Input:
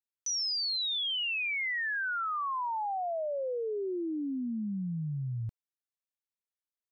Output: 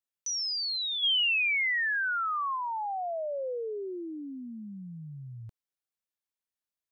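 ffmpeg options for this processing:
-filter_complex "[0:a]asplit=3[s0][s1][s2];[s0]afade=t=out:st=1.02:d=0.02[s3];[s1]highshelf=f=2300:g=10.5,afade=t=in:st=1.02:d=0.02,afade=t=out:st=2.55:d=0.02[s4];[s2]afade=t=in:st=2.55:d=0.02[s5];[s3][s4][s5]amix=inputs=3:normalize=0,acrossover=split=430[s6][s7];[s6]alimiter=level_in=5.96:limit=0.0631:level=0:latency=1,volume=0.168[s8];[s8][s7]amix=inputs=2:normalize=0"

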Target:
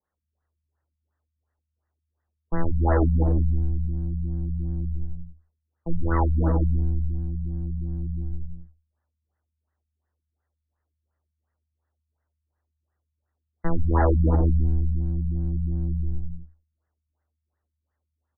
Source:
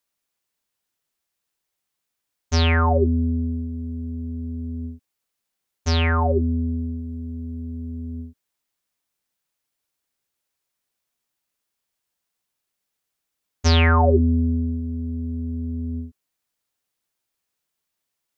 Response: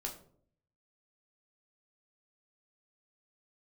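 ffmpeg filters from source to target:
-filter_complex "[0:a]aeval=exprs='if(lt(val(0),0),0.708*val(0),val(0))':c=same,aecho=1:1:104|119|187|250|346:0.376|0.224|0.376|0.299|0.266,asplit=2[s0][s1];[1:a]atrim=start_sample=2205,asetrate=83790,aresample=44100[s2];[s1][s2]afir=irnorm=-1:irlink=0,volume=0.531[s3];[s0][s3]amix=inputs=2:normalize=0,asoftclip=type=tanh:threshold=0.119,afreqshift=-77,afftfilt=real='re*lt(b*sr/1024,210*pow(2100/210,0.5+0.5*sin(2*PI*2.8*pts/sr)))':imag='im*lt(b*sr/1024,210*pow(2100/210,0.5+0.5*sin(2*PI*2.8*pts/sr)))':win_size=1024:overlap=0.75,volume=1.41"

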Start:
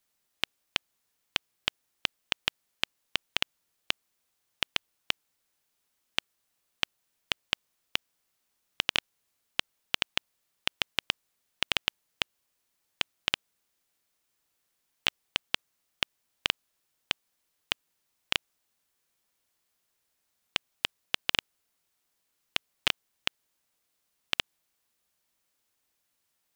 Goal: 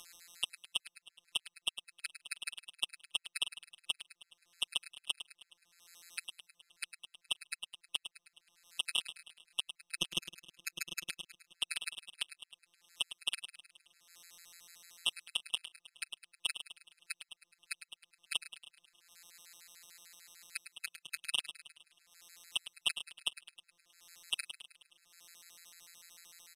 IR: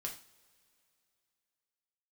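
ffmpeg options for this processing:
-filter_complex "[0:a]asettb=1/sr,asplit=3[s0][s1][s2];[s0]atrim=end=9.974[s3];[s1]atrim=start=9.97:end=11.07,asetpts=PTS-STARTPTS,afade=t=in:d=0.004:c=qsin,afade=t=out:st=1.096:d=0.004:c=qsin,equalizer=f=260:t=o:w=2.3:g=12.5[s4];[s2]atrim=start=11.066[s5];[s3][s4]acrossfade=d=0.004:c1=hsin:c2=qsin[s6];[s6][s5]acrossfade=d=0.004:c1=qsin:c2=hsin,asettb=1/sr,asplit=3[s7][s8][s9];[s7]atrim=end=20.714[s10];[s8]atrim=start=20.71:end=21.18,asetpts=PTS-STARTPTS,afade=t=in:d=0.004:c=qsin,afade=t=out:st=0.466:d=0.004:c=qsin,highpass=f=84:w=0.5412,highpass=f=84:w=1.3066[s11];[s9]atrim=start=21.176[s12];[s10][s11]acrossfade=d=0.004:c1=hsin:c2=qsin[s13];[s13][s12]acrossfade=d=0.004:c1=qsin:c2=hsin,asplit=2[s14][s15];[s15]acompressor=mode=upward:threshold=0.0398:ratio=2.5,volume=1[s16];[s14][s16]amix=inputs=2:normalize=0,asoftclip=type=tanh:threshold=0.211,crystalizer=i=6.5:c=0,afftfilt=real='hypot(re,im)*cos(PI*b)':imag='0':win_size=1024:overlap=0.75,adynamicsmooth=sensitivity=3.5:basefreq=2400,asplit=2[s17][s18];[s18]aecho=0:1:105|210|315|420|525|630:0.282|0.158|0.0884|0.0495|0.0277|0.0155[s19];[s17][s19]amix=inputs=2:normalize=0,aresample=32000,aresample=44100,afftfilt=real='re*gt(sin(2*PI*6.7*pts/sr)*(1-2*mod(floor(b*sr/1024/1300),2)),0)':imag='im*gt(sin(2*PI*6.7*pts/sr)*(1-2*mod(floor(b*sr/1024/1300),2)),0)':win_size=1024:overlap=0.75,volume=0.398"

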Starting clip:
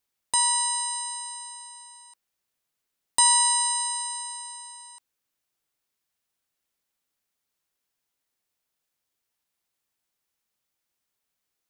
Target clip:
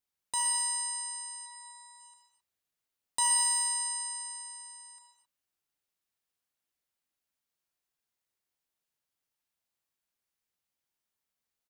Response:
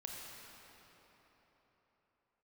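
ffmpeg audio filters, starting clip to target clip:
-filter_complex "[0:a]asplit=3[s0][s1][s2];[s0]afade=t=out:st=1.45:d=0.02[s3];[s1]aecho=1:1:5.3:0.89,afade=t=in:st=1.45:d=0.02,afade=t=out:st=1.99:d=0.02[s4];[s2]afade=t=in:st=1.99:d=0.02[s5];[s3][s4][s5]amix=inputs=3:normalize=0,asplit=2[s6][s7];[s7]volume=13.3,asoftclip=hard,volume=0.075,volume=0.282[s8];[s6][s8]amix=inputs=2:normalize=0[s9];[1:a]atrim=start_sample=2205,afade=t=out:st=0.32:d=0.01,atrim=end_sample=14553[s10];[s9][s10]afir=irnorm=-1:irlink=0,volume=0.562"

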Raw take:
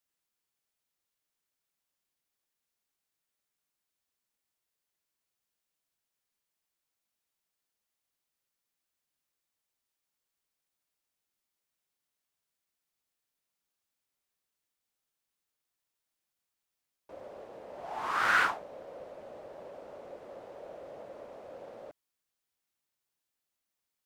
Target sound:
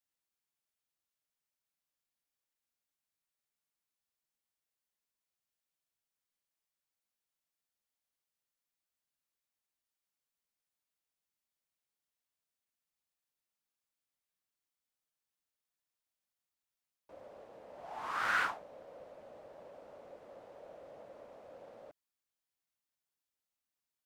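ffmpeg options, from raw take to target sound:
-af "equalizer=f=380:t=o:w=0.32:g=-4,volume=0.501"

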